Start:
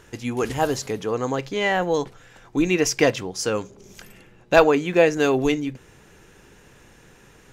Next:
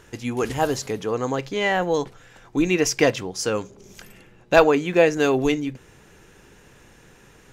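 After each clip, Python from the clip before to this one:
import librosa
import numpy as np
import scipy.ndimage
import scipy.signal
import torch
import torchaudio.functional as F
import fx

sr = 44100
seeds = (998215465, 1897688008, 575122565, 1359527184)

y = x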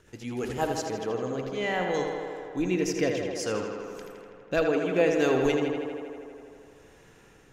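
y = fx.rotary_switch(x, sr, hz=8.0, then_hz=0.6, switch_at_s=0.38)
y = fx.echo_tape(y, sr, ms=81, feedback_pct=85, wet_db=-5.0, lp_hz=4700.0, drive_db=1.0, wow_cents=13)
y = y * 10.0 ** (-6.0 / 20.0)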